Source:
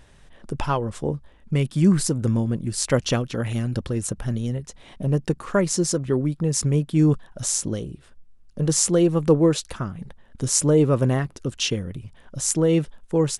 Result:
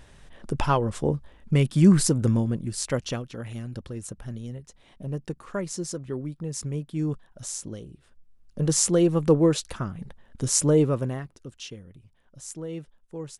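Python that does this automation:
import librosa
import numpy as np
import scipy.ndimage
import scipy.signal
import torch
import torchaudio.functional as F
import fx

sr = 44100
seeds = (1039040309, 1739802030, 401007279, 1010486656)

y = fx.gain(x, sr, db=fx.line((2.16, 1.0), (3.32, -10.0), (7.89, -10.0), (8.59, -2.0), (10.78, -2.0), (11.13, -10.0), (11.7, -16.0)))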